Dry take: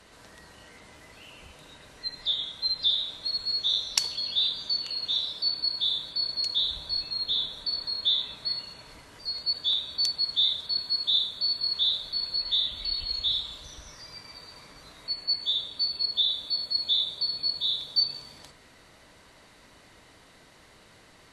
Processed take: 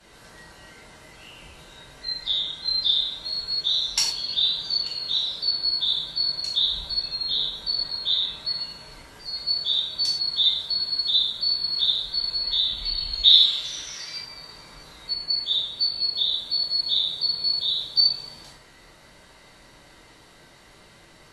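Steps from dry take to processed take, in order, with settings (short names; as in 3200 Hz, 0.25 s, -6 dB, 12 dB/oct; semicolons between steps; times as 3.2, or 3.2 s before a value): 13.23–14.18 weighting filter D; non-linear reverb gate 0.15 s falling, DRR -7 dB; gain -4.5 dB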